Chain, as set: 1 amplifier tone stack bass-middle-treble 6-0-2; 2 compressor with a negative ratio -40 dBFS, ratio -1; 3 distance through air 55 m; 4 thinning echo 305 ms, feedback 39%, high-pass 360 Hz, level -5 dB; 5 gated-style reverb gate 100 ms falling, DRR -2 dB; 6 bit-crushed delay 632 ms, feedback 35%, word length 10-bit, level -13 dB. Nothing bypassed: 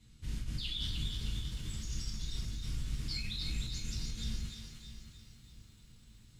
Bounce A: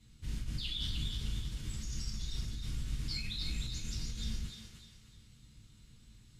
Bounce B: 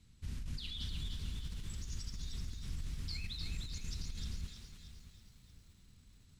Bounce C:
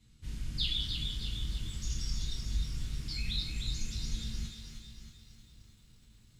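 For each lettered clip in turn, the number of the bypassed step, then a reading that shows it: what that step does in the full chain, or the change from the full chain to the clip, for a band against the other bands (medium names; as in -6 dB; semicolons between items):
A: 6, momentary loudness spread change +3 LU; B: 5, loudness change -4.5 LU; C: 2, crest factor change +2.0 dB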